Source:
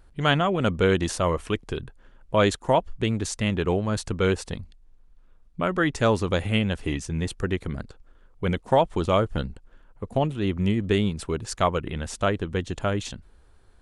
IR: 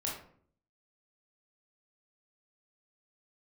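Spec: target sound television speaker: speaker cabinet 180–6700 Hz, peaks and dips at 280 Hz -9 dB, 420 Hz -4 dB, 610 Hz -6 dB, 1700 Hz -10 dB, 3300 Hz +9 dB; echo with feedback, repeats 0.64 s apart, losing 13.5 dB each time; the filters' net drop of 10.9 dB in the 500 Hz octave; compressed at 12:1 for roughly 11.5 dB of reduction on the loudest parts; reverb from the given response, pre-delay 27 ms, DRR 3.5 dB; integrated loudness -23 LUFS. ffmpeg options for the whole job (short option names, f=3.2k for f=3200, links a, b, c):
-filter_complex "[0:a]equalizer=f=500:t=o:g=-8,acompressor=threshold=-30dB:ratio=12,aecho=1:1:640|1280:0.211|0.0444,asplit=2[a][b];[1:a]atrim=start_sample=2205,adelay=27[c];[b][c]afir=irnorm=-1:irlink=0,volume=-6dB[d];[a][d]amix=inputs=2:normalize=0,highpass=f=180:w=0.5412,highpass=f=180:w=1.3066,equalizer=f=280:t=q:w=4:g=-9,equalizer=f=420:t=q:w=4:g=-4,equalizer=f=610:t=q:w=4:g=-6,equalizer=f=1.7k:t=q:w=4:g=-10,equalizer=f=3.3k:t=q:w=4:g=9,lowpass=f=6.7k:w=0.5412,lowpass=f=6.7k:w=1.3066,volume=14.5dB"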